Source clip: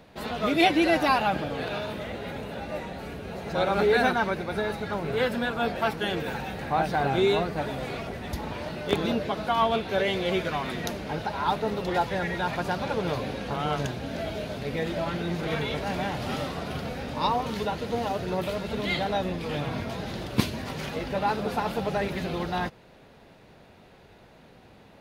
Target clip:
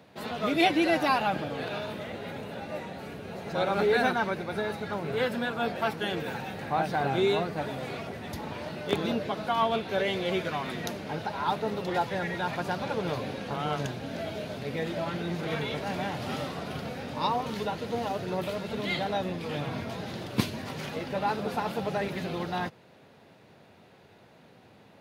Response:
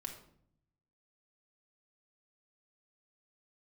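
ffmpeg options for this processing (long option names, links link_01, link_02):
-af "highpass=frequency=87:width=0.5412,highpass=frequency=87:width=1.3066,volume=-2.5dB"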